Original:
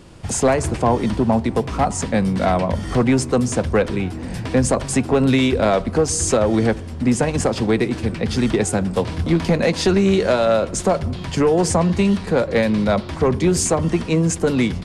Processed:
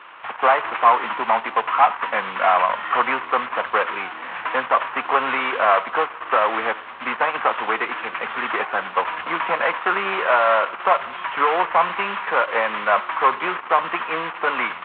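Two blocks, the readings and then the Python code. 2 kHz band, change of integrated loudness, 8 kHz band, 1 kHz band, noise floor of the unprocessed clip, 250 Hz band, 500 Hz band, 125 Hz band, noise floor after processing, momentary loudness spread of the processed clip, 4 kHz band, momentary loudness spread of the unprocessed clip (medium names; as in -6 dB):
+7.0 dB, -2.0 dB, under -40 dB, +7.5 dB, -30 dBFS, -19.0 dB, -6.0 dB, under -25 dB, -36 dBFS, 8 LU, -3.0 dB, 5 LU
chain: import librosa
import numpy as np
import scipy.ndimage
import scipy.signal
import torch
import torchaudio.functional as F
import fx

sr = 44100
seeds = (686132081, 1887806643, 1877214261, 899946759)

y = fx.cvsd(x, sr, bps=16000)
y = fx.highpass_res(y, sr, hz=1100.0, q=2.7)
y = F.gain(torch.from_numpy(y), 6.0).numpy()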